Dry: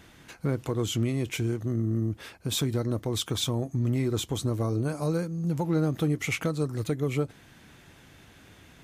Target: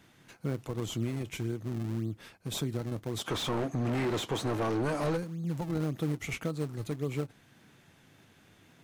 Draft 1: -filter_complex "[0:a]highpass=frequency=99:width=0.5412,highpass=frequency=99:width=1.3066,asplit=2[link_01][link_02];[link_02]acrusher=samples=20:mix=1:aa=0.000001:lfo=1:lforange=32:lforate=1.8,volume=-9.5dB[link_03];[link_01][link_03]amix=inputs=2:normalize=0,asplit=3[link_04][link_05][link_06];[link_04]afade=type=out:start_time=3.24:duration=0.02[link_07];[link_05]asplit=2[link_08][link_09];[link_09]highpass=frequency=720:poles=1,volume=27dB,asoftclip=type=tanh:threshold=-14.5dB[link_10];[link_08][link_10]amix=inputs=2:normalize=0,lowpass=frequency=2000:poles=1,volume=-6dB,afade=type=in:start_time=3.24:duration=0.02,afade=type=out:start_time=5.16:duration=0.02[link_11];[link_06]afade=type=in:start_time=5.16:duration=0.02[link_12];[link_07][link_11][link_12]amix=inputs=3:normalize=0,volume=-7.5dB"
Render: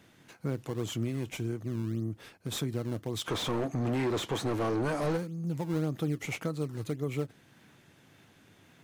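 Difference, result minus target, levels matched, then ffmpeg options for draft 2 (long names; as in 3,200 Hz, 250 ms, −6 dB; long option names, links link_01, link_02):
sample-and-hold swept by an LFO: distortion −7 dB
-filter_complex "[0:a]highpass=frequency=99:width=0.5412,highpass=frequency=99:width=1.3066,asplit=2[link_01][link_02];[link_02]acrusher=samples=52:mix=1:aa=0.000001:lfo=1:lforange=83.2:lforate=1.8,volume=-9.5dB[link_03];[link_01][link_03]amix=inputs=2:normalize=0,asplit=3[link_04][link_05][link_06];[link_04]afade=type=out:start_time=3.24:duration=0.02[link_07];[link_05]asplit=2[link_08][link_09];[link_09]highpass=frequency=720:poles=1,volume=27dB,asoftclip=type=tanh:threshold=-14.5dB[link_10];[link_08][link_10]amix=inputs=2:normalize=0,lowpass=frequency=2000:poles=1,volume=-6dB,afade=type=in:start_time=3.24:duration=0.02,afade=type=out:start_time=5.16:duration=0.02[link_11];[link_06]afade=type=in:start_time=5.16:duration=0.02[link_12];[link_07][link_11][link_12]amix=inputs=3:normalize=0,volume=-7.5dB"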